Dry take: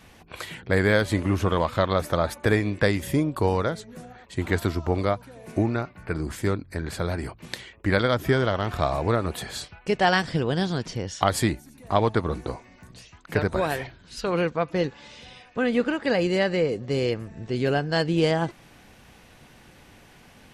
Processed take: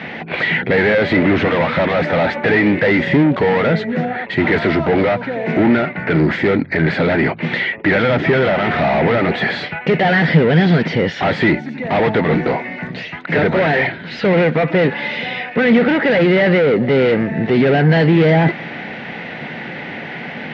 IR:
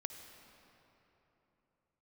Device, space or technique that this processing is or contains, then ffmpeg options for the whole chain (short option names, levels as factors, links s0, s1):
overdrive pedal into a guitar cabinet: -filter_complex "[0:a]asplit=2[s0][s1];[s1]highpass=f=720:p=1,volume=70.8,asoftclip=type=tanh:threshold=0.596[s2];[s0][s2]amix=inputs=2:normalize=0,lowpass=f=1100:p=1,volume=0.501,highpass=100,equalizer=f=160:t=q:w=4:g=9,equalizer=f=230:t=q:w=4:g=5,equalizer=f=1100:t=q:w=4:g=-10,equalizer=f=2000:t=q:w=4:g=9,lowpass=f=4000:w=0.5412,lowpass=f=4000:w=1.3066,volume=0.891"